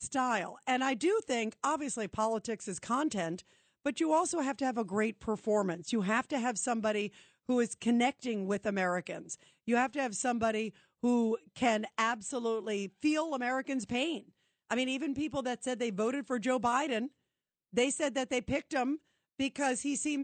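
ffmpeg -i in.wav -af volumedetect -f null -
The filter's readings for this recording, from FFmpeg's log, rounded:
mean_volume: -33.0 dB
max_volume: -17.0 dB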